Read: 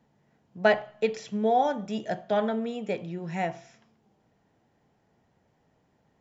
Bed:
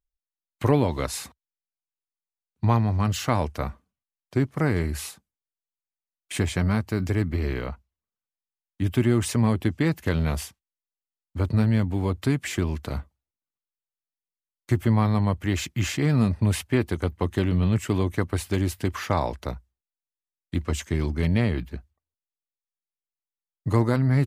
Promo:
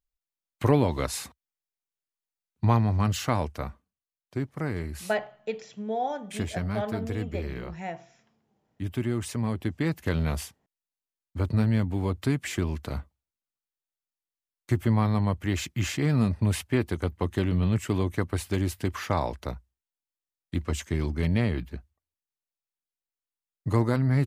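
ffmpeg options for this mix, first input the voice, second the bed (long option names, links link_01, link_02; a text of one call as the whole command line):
ffmpeg -i stem1.wav -i stem2.wav -filter_complex "[0:a]adelay=4450,volume=-6dB[link_01];[1:a]volume=4dB,afade=type=out:start_time=3.03:duration=0.91:silence=0.473151,afade=type=in:start_time=9.44:duration=0.7:silence=0.562341[link_02];[link_01][link_02]amix=inputs=2:normalize=0" out.wav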